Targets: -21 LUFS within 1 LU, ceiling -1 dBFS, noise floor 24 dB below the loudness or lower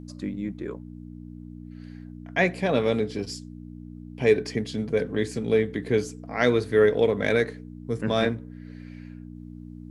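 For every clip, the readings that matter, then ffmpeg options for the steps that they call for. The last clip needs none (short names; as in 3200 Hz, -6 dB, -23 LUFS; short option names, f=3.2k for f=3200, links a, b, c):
hum 60 Hz; harmonics up to 300 Hz; hum level -39 dBFS; loudness -25.5 LUFS; peak -7.5 dBFS; loudness target -21.0 LUFS
-> -af "bandreject=f=60:t=h:w=4,bandreject=f=120:t=h:w=4,bandreject=f=180:t=h:w=4,bandreject=f=240:t=h:w=4,bandreject=f=300:t=h:w=4"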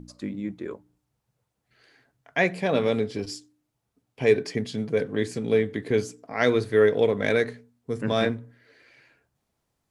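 hum none; loudness -25.5 LUFS; peak -7.5 dBFS; loudness target -21.0 LUFS
-> -af "volume=4.5dB"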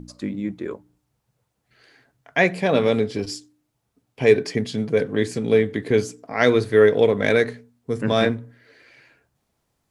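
loudness -21.0 LUFS; peak -3.0 dBFS; noise floor -74 dBFS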